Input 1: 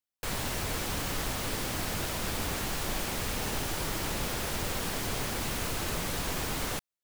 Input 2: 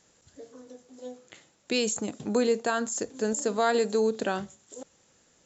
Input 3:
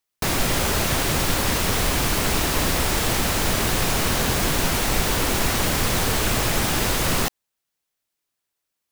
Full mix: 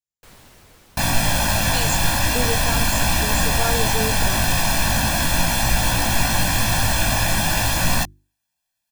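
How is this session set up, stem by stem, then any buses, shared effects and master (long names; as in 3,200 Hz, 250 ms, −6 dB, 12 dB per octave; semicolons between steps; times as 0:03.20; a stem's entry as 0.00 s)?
−11.0 dB, 0.00 s, no send, automatic ducking −15 dB, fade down 1.75 s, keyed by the second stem
−5.0 dB, 0.00 s, no send, multiband upward and downward expander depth 100%
+2.5 dB, 0.75 s, no send, mains-hum notches 50/100/150/200/250/300/350 Hz; comb filter 1.2 ms, depth 95%; chorus effect 0.39 Hz, delay 17.5 ms, depth 2 ms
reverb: not used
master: no processing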